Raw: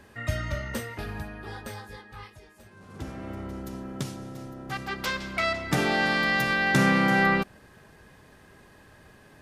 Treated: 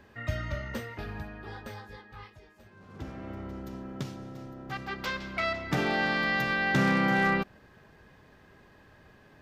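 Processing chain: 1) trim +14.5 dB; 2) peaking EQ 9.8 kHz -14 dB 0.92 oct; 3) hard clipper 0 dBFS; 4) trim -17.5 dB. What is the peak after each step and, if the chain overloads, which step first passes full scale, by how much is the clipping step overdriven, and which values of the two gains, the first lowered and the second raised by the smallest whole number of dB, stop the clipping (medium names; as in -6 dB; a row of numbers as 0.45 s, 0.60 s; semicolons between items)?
+5.5 dBFS, +5.0 dBFS, 0.0 dBFS, -17.5 dBFS; step 1, 5.0 dB; step 1 +9.5 dB, step 4 -12.5 dB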